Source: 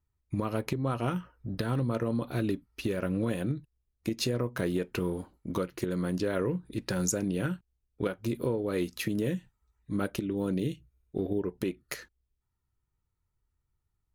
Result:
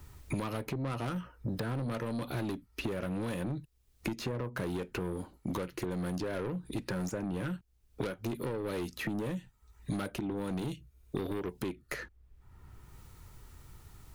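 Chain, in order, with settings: saturation -31.5 dBFS, distortion -9 dB; three bands compressed up and down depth 100%

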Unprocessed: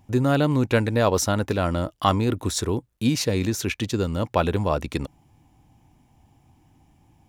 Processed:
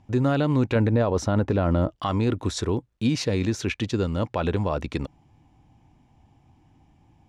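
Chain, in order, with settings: 0.75–1.96 s: tilt shelf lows +5.5 dB, about 1.5 kHz; peak limiter -13 dBFS, peak gain reduction 9.5 dB; distance through air 82 m

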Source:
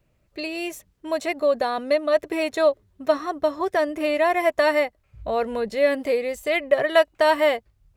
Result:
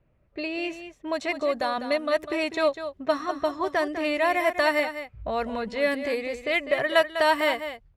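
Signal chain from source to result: level-controlled noise filter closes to 2 kHz, open at -16.5 dBFS; dynamic bell 500 Hz, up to -7 dB, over -33 dBFS, Q 1.4; on a send: delay 200 ms -10.5 dB

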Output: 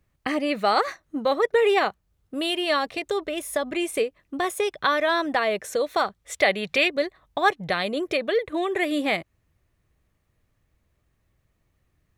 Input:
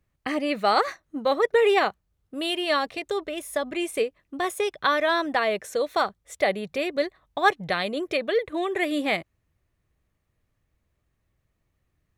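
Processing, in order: 6.04–6.87 s: peaking EQ 2.8 kHz +1.5 dB -> +13 dB 2.6 oct; in parallel at 0 dB: compression, threshold -30 dBFS, peak gain reduction 16 dB; on the sum: trim -2 dB

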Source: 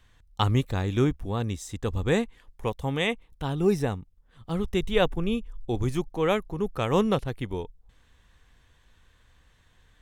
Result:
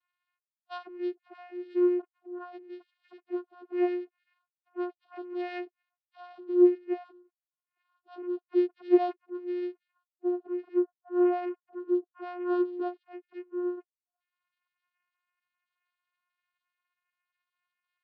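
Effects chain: formants replaced by sine waves; time stretch by phase-locked vocoder 1.8×; vocoder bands 8, saw 356 Hz; trim -3 dB

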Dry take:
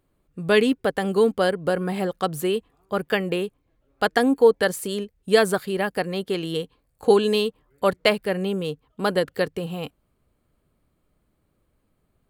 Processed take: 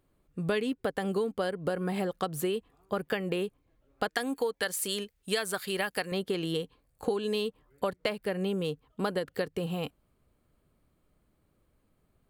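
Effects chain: 4.08–6.12 s: tilt shelf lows -6.5 dB; compression 10:1, threshold -25 dBFS, peak gain reduction 14.5 dB; trim -1.5 dB

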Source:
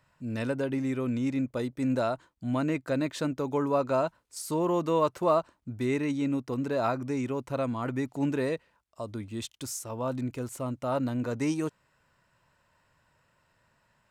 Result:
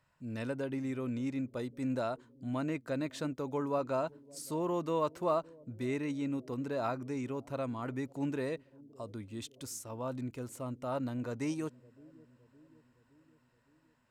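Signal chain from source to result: bucket-brigade echo 564 ms, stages 2048, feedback 59%, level -22 dB; trim -6.5 dB

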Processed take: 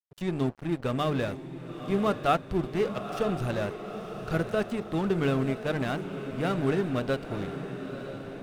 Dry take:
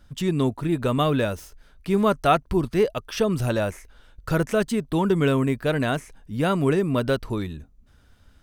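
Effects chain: treble shelf 7 kHz -11 dB; band-stop 960 Hz, Q 7.4; de-hum 73.51 Hz, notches 8; crossover distortion -33.5 dBFS; on a send: echo that smears into a reverb 945 ms, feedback 57%, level -9.5 dB; on the sum: trim -4 dB

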